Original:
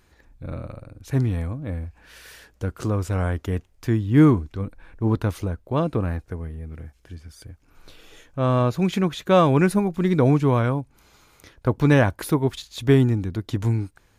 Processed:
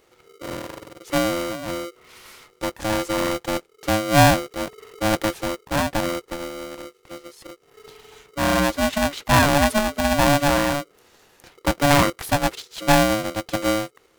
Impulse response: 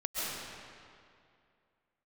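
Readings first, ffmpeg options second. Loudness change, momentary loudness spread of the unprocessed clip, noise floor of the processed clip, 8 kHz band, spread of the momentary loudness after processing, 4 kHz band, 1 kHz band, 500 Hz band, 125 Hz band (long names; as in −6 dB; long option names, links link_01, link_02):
+0.5 dB, 17 LU, −60 dBFS, +13.5 dB, 17 LU, +11.5 dB, +7.0 dB, +1.5 dB, −6.0 dB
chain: -af "aeval=exprs='val(0)*sgn(sin(2*PI*430*n/s))':channel_layout=same"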